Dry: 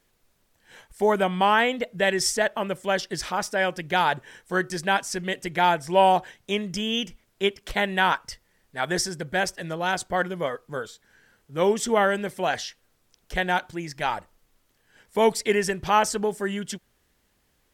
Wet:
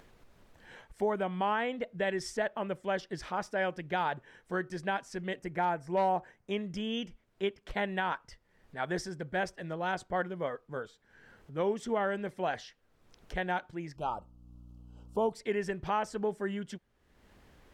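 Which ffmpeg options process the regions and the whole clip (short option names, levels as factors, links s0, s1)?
-filter_complex "[0:a]asettb=1/sr,asplit=3[s0][s1][s2];[s0]atrim=end=5.394[s3];[s1]atrim=start=5.39:end=6.51,asetpts=PTS-STARTPTS,afade=t=in:d=0.004:c=qsin,afade=t=out:st=1.116:d=0.004:c=qsin,equalizer=f=3400:w=1.9:g=-10.5,aeval=exprs='0.282*(abs(mod(val(0)/0.282+3,4)-2)-1)':c=same[s4];[s2]atrim=start=6.506[s5];[s3][s4]acrossfade=d=0.004:c1=hsin:c2=qsin[s6];[s6][s5]acrossfade=d=0.004:c1=qsin:c2=hsin,asettb=1/sr,asplit=3[s7][s8][s9];[s7]atrim=end=13.964[s10];[s8]atrim=start=13.96:end=15.33,asetpts=PTS-STARTPTS,afade=t=in:d=0.004:c=qsin,afade=t=out:st=1.366:d=0.004:c=qsin,equalizer=f=3500:t=o:w=0.6:g=-6.5,aeval=exprs='val(0)+0.00316*(sin(2*PI*60*n/s)+sin(2*PI*2*60*n/s)/2+sin(2*PI*3*60*n/s)/3+sin(2*PI*4*60*n/s)/4+sin(2*PI*5*60*n/s)/5)':c=same,asuperstop=centerf=1900:order=8:qfactor=1.4[s11];[s9]atrim=start=15.326[s12];[s10][s11]acrossfade=d=0.004:c1=hsin:c2=qsin[s13];[s13][s12]acrossfade=d=0.004:c1=qsin:c2=hsin,lowpass=f=1700:p=1,alimiter=limit=0.178:level=0:latency=1:release=302,acompressor=mode=upward:threshold=0.0126:ratio=2.5,volume=0.501"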